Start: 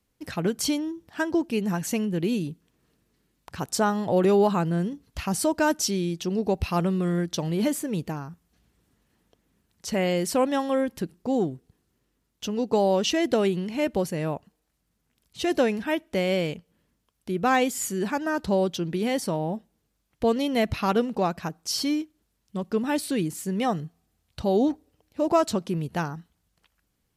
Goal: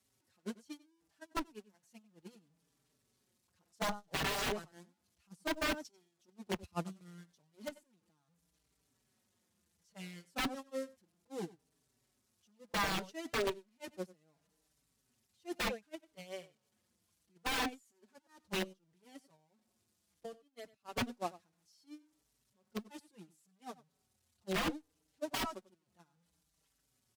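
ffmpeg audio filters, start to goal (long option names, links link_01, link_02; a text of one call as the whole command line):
ffmpeg -i in.wav -filter_complex "[0:a]aeval=exprs='val(0)+0.5*0.0708*sgn(val(0))':channel_layout=same,agate=range=-53dB:threshold=-16dB:ratio=16:detection=peak,highpass=75,asplit=3[link_01][link_02][link_03];[link_01]afade=type=out:start_time=18.62:duration=0.02[link_04];[link_02]acompressor=threshold=-49dB:ratio=16,afade=type=in:start_time=18.62:duration=0.02,afade=type=out:start_time=20.96:duration=0.02[link_05];[link_03]afade=type=in:start_time=20.96:duration=0.02[link_06];[link_04][link_05][link_06]amix=inputs=3:normalize=0,lowpass=11000,asplit=2[link_07][link_08];[link_08]adelay=93.29,volume=-19dB,highshelf=frequency=4000:gain=-2.1[link_09];[link_07][link_09]amix=inputs=2:normalize=0,aeval=exprs='(mod(33.5*val(0)+1,2)-1)/33.5':channel_layout=same,acrossover=split=3800[link_10][link_11];[link_11]acompressor=threshold=-53dB:ratio=4:attack=1:release=60[link_12];[link_10][link_12]amix=inputs=2:normalize=0,bass=frequency=250:gain=1,treble=frequency=4000:gain=7,asplit=2[link_13][link_14];[link_14]adelay=4.8,afreqshift=-0.67[link_15];[link_13][link_15]amix=inputs=2:normalize=1,volume=5.5dB" out.wav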